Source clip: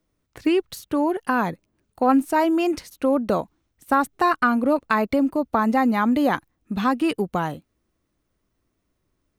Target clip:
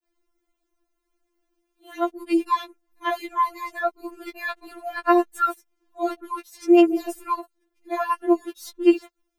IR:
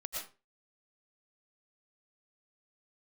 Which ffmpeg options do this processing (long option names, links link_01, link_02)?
-af "areverse,afftfilt=real='re*4*eq(mod(b,16),0)':imag='im*4*eq(mod(b,16),0)':win_size=2048:overlap=0.75"